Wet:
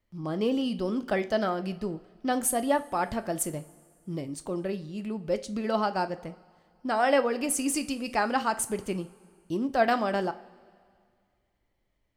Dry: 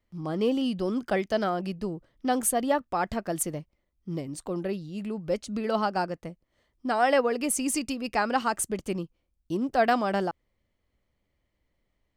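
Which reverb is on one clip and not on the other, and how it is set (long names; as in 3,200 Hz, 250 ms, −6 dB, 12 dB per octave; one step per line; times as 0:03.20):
coupled-rooms reverb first 0.32 s, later 2.1 s, from −18 dB, DRR 9 dB
level −1 dB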